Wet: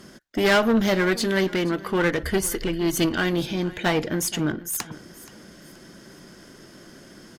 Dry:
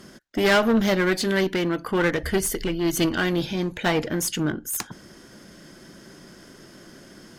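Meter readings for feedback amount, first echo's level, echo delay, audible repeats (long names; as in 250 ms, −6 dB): 33%, −19.0 dB, 476 ms, 2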